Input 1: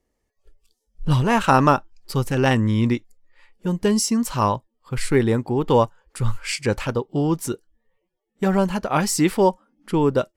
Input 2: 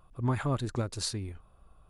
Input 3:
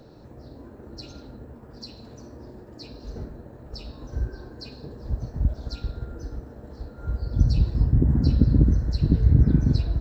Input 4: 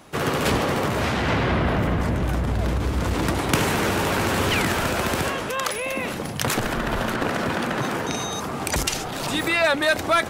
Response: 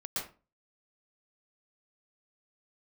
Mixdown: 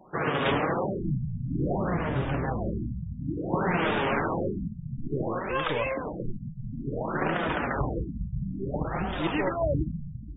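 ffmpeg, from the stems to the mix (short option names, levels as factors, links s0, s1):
-filter_complex "[0:a]aeval=exprs='if(lt(val(0),0),0.708*val(0),val(0))':c=same,volume=0.355,asplit=2[s0][s1];[1:a]aeval=exprs='val(0)*sin(2*PI*68*n/s)':c=same,adelay=800,volume=0.841[s2];[2:a]adelay=400,volume=0.422[s3];[3:a]lowshelf=f=160:g=-7,volume=1.12[s4];[s1]apad=whole_len=458887[s5];[s3][s5]sidechaincompress=threshold=0.0224:ratio=8:attack=10:release=188[s6];[s0][s2][s6][s4]amix=inputs=4:normalize=0,flanger=delay=5.1:depth=2.4:regen=37:speed=1.1:shape=triangular,afftfilt=real='re*lt(b*sr/1024,210*pow(3800/210,0.5+0.5*sin(2*PI*0.57*pts/sr)))':imag='im*lt(b*sr/1024,210*pow(3800/210,0.5+0.5*sin(2*PI*0.57*pts/sr)))':win_size=1024:overlap=0.75"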